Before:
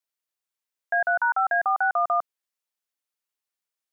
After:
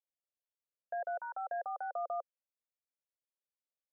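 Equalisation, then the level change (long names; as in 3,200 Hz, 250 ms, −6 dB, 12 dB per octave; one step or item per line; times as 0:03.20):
low-pass with resonance 540 Hz, resonance Q 5.4
first difference
+6.0 dB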